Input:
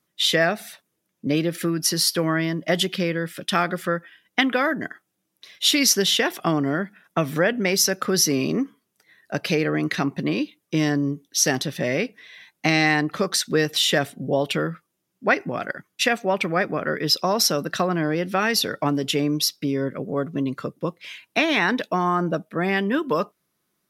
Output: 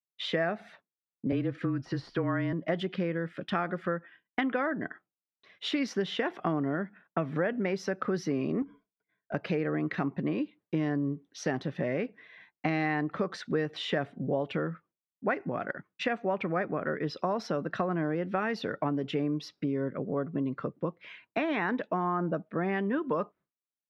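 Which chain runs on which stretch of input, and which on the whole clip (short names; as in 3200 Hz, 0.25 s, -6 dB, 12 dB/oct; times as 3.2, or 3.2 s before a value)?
1.32–2.53 de-esser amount 45% + LPF 7900 Hz + frequency shift -27 Hz
8.62–9.34 ripple EQ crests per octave 1.7, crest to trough 15 dB + compressor 16:1, threshold -30 dBFS + overloaded stage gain 29.5 dB
whole clip: expander -44 dBFS; LPF 1700 Hz 12 dB/oct; compressor 2:1, threshold -28 dBFS; gain -2 dB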